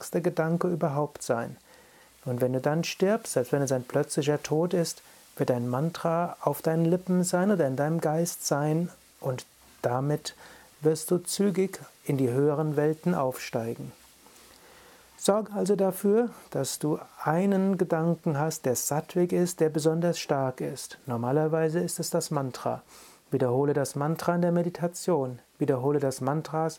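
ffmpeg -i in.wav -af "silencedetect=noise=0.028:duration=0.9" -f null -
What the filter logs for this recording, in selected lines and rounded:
silence_start: 13.86
silence_end: 15.23 | silence_duration: 1.37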